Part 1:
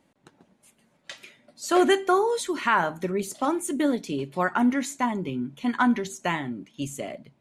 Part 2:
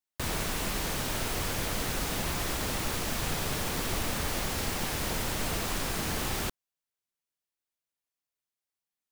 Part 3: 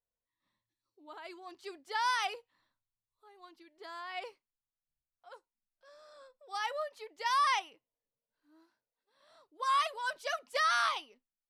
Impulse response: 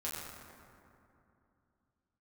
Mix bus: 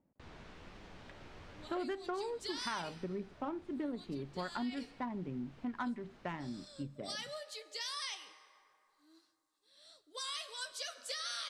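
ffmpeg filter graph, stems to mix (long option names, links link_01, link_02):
-filter_complex "[0:a]adynamicsmooth=sensitivity=1.5:basefreq=1200,bass=frequency=250:gain=4,treble=frequency=4000:gain=-8,volume=-11.5dB,asplit=2[link_01][link_02];[1:a]lowpass=5100,aemphasis=mode=reproduction:type=50fm,volume=-17dB,asplit=2[link_03][link_04];[link_04]volume=-13dB[link_05];[2:a]equalizer=frequency=1000:width_type=o:width=1:gain=-12,equalizer=frequency=4000:width_type=o:width=1:gain=9,equalizer=frequency=8000:width_type=o:width=1:gain=12,acompressor=threshold=-39dB:ratio=1.5,adelay=550,volume=2dB,asplit=2[link_06][link_07];[link_07]volume=-18dB[link_08];[link_02]apad=whole_len=401840[link_09];[link_03][link_09]sidechaincompress=threshold=-52dB:ratio=8:attack=16:release=355[link_10];[link_10][link_06]amix=inputs=2:normalize=0,flanger=delay=9.3:depth=5.3:regen=45:speed=1.2:shape=triangular,acompressor=threshold=-42dB:ratio=2,volume=0dB[link_11];[3:a]atrim=start_sample=2205[link_12];[link_08][link_12]afir=irnorm=-1:irlink=0[link_13];[link_05]aecho=0:1:159|318|477|636|795|954:1|0.44|0.194|0.0852|0.0375|0.0165[link_14];[link_01][link_11][link_13][link_14]amix=inputs=4:normalize=0,acompressor=threshold=-36dB:ratio=4"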